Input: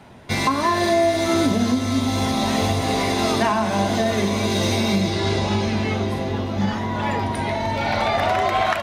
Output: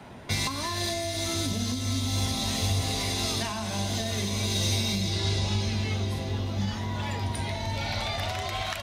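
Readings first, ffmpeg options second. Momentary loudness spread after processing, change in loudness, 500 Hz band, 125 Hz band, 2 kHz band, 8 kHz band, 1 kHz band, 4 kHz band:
5 LU, −7.5 dB, −14.0 dB, −3.0 dB, −9.0 dB, 0.0 dB, −13.5 dB, −2.0 dB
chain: -filter_complex "[0:a]acrossover=split=120|3000[link_01][link_02][link_03];[link_02]acompressor=threshold=-38dB:ratio=3[link_04];[link_01][link_04][link_03]amix=inputs=3:normalize=0"

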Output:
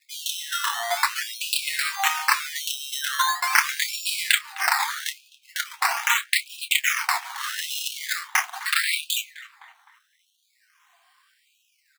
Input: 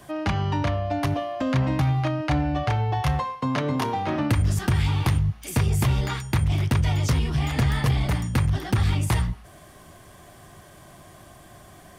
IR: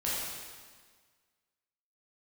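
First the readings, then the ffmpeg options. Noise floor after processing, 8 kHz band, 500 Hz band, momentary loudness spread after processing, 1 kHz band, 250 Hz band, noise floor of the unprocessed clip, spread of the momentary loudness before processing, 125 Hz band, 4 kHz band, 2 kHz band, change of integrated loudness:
−68 dBFS, +11.0 dB, −12.0 dB, 9 LU, +2.5 dB, below −40 dB, −49 dBFS, 3 LU, below −40 dB, +10.0 dB, +10.5 dB, +0.5 dB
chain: -filter_complex "[0:a]afftfilt=real='re*between(b*sr/4096,180,3200)':imag='im*between(b*sr/4096,180,3200)':win_size=4096:overlap=0.75,afwtdn=0.0158,adynamicequalizer=threshold=0.00501:dfrequency=2100:dqfactor=1.2:tfrequency=2100:tqfactor=1.2:attack=5:release=100:ratio=0.375:range=3:mode=boostabove:tftype=bell,crystalizer=i=9.5:c=0,acrusher=samples=13:mix=1:aa=0.000001:lfo=1:lforange=13:lforate=0.42,flanger=delay=5.4:depth=2.1:regen=-51:speed=0.47:shape=sinusoidal,aeval=exprs='val(0)+0.00316*(sin(2*PI*50*n/s)+sin(2*PI*2*50*n/s)/2+sin(2*PI*3*50*n/s)/3+sin(2*PI*4*50*n/s)/4+sin(2*PI*5*50*n/s)/5)':channel_layout=same,asplit=2[link_01][link_02];[link_02]adelay=28,volume=-13dB[link_03];[link_01][link_03]amix=inputs=2:normalize=0,asplit=2[link_04][link_05];[link_05]adelay=257,lowpass=frequency=2300:poles=1,volume=-17dB,asplit=2[link_06][link_07];[link_07]adelay=257,lowpass=frequency=2300:poles=1,volume=0.5,asplit=2[link_08][link_09];[link_09]adelay=257,lowpass=frequency=2300:poles=1,volume=0.5,asplit=2[link_10][link_11];[link_11]adelay=257,lowpass=frequency=2300:poles=1,volume=0.5[link_12];[link_06][link_08][link_10][link_12]amix=inputs=4:normalize=0[link_13];[link_04][link_13]amix=inputs=2:normalize=0,afftfilt=real='re*gte(b*sr/1024,660*pow(2500/660,0.5+0.5*sin(2*PI*0.79*pts/sr)))':imag='im*gte(b*sr/1024,660*pow(2500/660,0.5+0.5*sin(2*PI*0.79*pts/sr)))':win_size=1024:overlap=0.75,volume=5.5dB"

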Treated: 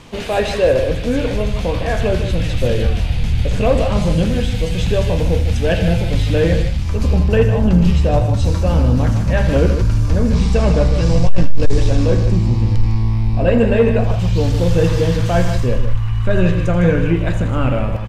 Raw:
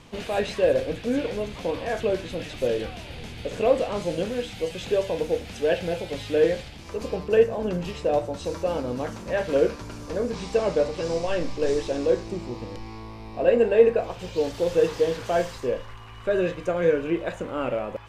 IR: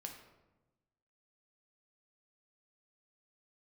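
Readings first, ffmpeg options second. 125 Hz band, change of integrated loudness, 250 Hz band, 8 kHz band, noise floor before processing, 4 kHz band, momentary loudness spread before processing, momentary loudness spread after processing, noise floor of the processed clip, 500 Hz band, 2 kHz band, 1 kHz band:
+23.0 dB, +9.0 dB, +12.0 dB, +8.5 dB, −41 dBFS, +8.5 dB, 12 LU, 5 LU, −20 dBFS, +4.0 dB, +8.0 dB, +6.5 dB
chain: -filter_complex "[0:a]asubboost=boost=12:cutoff=120,asplit=2[link_01][link_02];[link_02]aecho=0:1:81.63|154.5:0.251|0.355[link_03];[link_01][link_03]amix=inputs=2:normalize=0,asoftclip=type=tanh:threshold=-11dB,volume=8.5dB"

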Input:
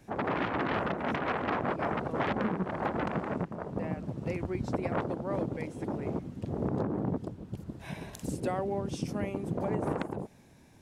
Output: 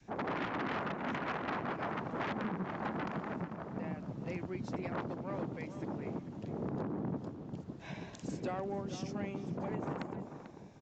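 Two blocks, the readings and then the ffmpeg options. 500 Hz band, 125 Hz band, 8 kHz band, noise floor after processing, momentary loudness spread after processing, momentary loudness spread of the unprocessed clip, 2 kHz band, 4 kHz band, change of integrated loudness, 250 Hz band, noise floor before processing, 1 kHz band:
−7.0 dB, −6.0 dB, can't be measured, −51 dBFS, 7 LU, 7 LU, −4.5 dB, −4.0 dB, −6.0 dB, −5.5 dB, −56 dBFS, −5.5 dB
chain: -filter_complex "[0:a]adynamicequalizer=threshold=0.00562:dfrequency=500:dqfactor=1.1:tfrequency=500:tqfactor=1.1:attack=5:release=100:ratio=0.375:range=2.5:mode=cutabove:tftype=bell,acrossover=split=110|1300[link_01][link_02][link_03];[link_01]acompressor=threshold=-59dB:ratio=6[link_04];[link_04][link_02][link_03]amix=inputs=3:normalize=0,asoftclip=type=tanh:threshold=-25.5dB,asplit=2[link_05][link_06];[link_06]adelay=443,lowpass=frequency=2100:poles=1,volume=-10dB,asplit=2[link_07][link_08];[link_08]adelay=443,lowpass=frequency=2100:poles=1,volume=0.24,asplit=2[link_09][link_10];[link_10]adelay=443,lowpass=frequency=2100:poles=1,volume=0.24[link_11];[link_07][link_09][link_11]amix=inputs=3:normalize=0[link_12];[link_05][link_12]amix=inputs=2:normalize=0,aresample=16000,aresample=44100,volume=-3dB"

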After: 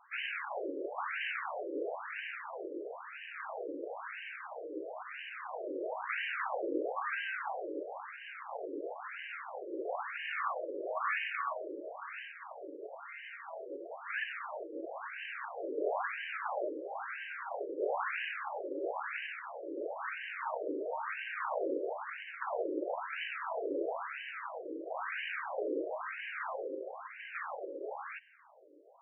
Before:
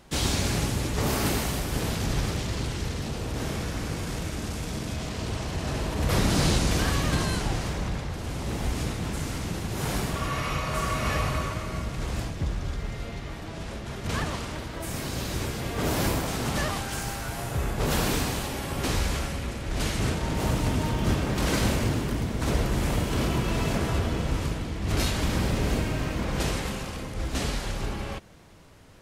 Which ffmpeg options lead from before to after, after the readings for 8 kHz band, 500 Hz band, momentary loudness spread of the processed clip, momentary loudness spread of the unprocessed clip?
below −40 dB, −5.0 dB, 9 LU, 8 LU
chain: -filter_complex "[0:a]bandreject=frequency=50:width_type=h:width=6,bandreject=frequency=100:width_type=h:width=6,bandreject=frequency=150:width_type=h:width=6,bandreject=frequency=200:width_type=h:width=6,bandreject=frequency=250:width_type=h:width=6,bandreject=frequency=300:width_type=h:width=6,bandreject=frequency=350:width_type=h:width=6,bandreject=frequency=400:width_type=h:width=6,bandreject=frequency=450:width_type=h:width=6,aeval=exprs='0.266*(cos(1*acos(clip(val(0)/0.266,-1,1)))-cos(1*PI/2))+0.075*(cos(2*acos(clip(val(0)/0.266,-1,1)))-cos(2*PI/2))+0.0668*(cos(4*acos(clip(val(0)/0.266,-1,1)))-cos(4*PI/2))+0.00944*(cos(6*acos(clip(val(0)/0.266,-1,1)))-cos(6*PI/2))':channel_layout=same,aeval=exprs='val(0)+0.00398*(sin(2*PI*60*n/s)+sin(2*PI*2*60*n/s)/2+sin(2*PI*3*60*n/s)/3+sin(2*PI*4*60*n/s)/4+sin(2*PI*5*60*n/s)/5)':channel_layout=same,asplit=2[link_01][link_02];[link_02]asoftclip=type=tanh:threshold=-23dB,volume=-5.5dB[link_03];[link_01][link_03]amix=inputs=2:normalize=0,afftfilt=real='re*between(b*sr/1024,400*pow(2200/400,0.5+0.5*sin(2*PI*1*pts/sr))/1.41,400*pow(2200/400,0.5+0.5*sin(2*PI*1*pts/sr))*1.41)':imag='im*between(b*sr/1024,400*pow(2200/400,0.5+0.5*sin(2*PI*1*pts/sr))/1.41,400*pow(2200/400,0.5+0.5*sin(2*PI*1*pts/sr))*1.41)':win_size=1024:overlap=0.75,volume=-2.5dB"

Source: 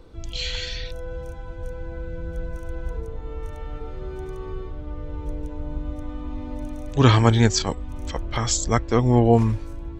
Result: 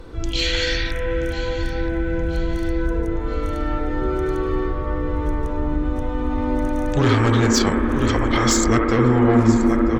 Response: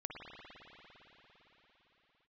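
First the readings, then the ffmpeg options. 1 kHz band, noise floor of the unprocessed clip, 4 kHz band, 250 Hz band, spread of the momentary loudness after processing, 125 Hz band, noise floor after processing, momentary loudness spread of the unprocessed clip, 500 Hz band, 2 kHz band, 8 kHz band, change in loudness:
+4.0 dB, −35 dBFS, +4.0 dB, +7.0 dB, 9 LU, +0.5 dB, −25 dBFS, 18 LU, +4.5 dB, +8.0 dB, +2.5 dB, +3.0 dB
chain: -filter_complex "[0:a]aecho=1:1:977|1954|2931|3908:0.158|0.0761|0.0365|0.0175,asoftclip=type=tanh:threshold=-15.5dB,equalizer=frequency=1700:width=1.9:gain=5.5,acompressor=threshold=-25dB:ratio=6,asplit=2[link_01][link_02];[link_02]highpass=frequency=230:width=0.5412,highpass=frequency=230:width=1.3066,equalizer=frequency=240:width_type=q:width=4:gain=10,equalizer=frequency=340:width_type=q:width=4:gain=8,equalizer=frequency=720:width_type=q:width=4:gain=-4,equalizer=frequency=1300:width_type=q:width=4:gain=3,lowpass=frequency=2200:width=0.5412,lowpass=frequency=2200:width=1.3066[link_03];[1:a]atrim=start_sample=2205,adelay=70[link_04];[link_03][link_04]afir=irnorm=-1:irlink=0,volume=0.5dB[link_05];[link_01][link_05]amix=inputs=2:normalize=0,volume=8.5dB" -ar 48000 -c:a libvorbis -b:a 96k

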